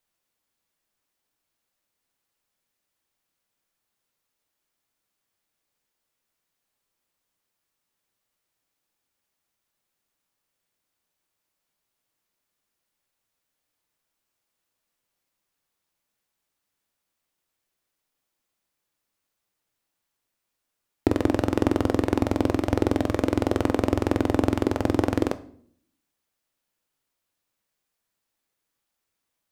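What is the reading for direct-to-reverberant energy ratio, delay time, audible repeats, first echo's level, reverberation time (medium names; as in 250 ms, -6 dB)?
11.0 dB, no echo, no echo, no echo, 0.60 s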